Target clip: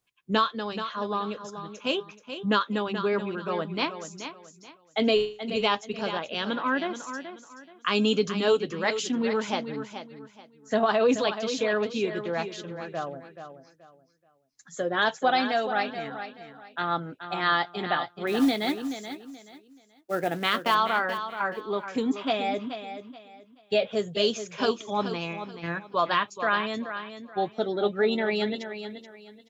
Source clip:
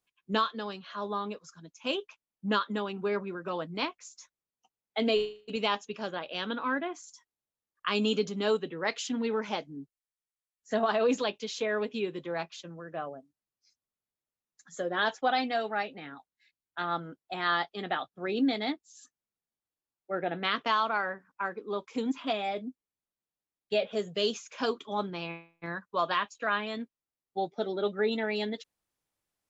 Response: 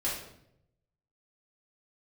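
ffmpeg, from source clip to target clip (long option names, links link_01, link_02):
-filter_complex "[0:a]equalizer=frequency=120:width=3.3:gain=9,asettb=1/sr,asplit=3[link_01][link_02][link_03];[link_01]atrim=end=18.274[link_04];[link_02]atrim=start=18.27:end=20.75,asetpts=PTS-STARTPTS,afade=type=in:duration=0.004:curve=qsin,afade=type=out:start_time=2.476:duration=0.004:curve=qsin,acrusher=bits=5:mode=log:mix=0:aa=0.000001[link_05];[link_03]atrim=start=20.746[link_06];[link_04][link_05]acrossfade=duration=0.004:curve1=hsin:curve2=qsin[link_07];[link_07][link_06]acrossfade=duration=0.004:curve1=qsin:curve2=hsin,aecho=1:1:429|858|1287:0.316|0.0854|0.0231,volume=4dB"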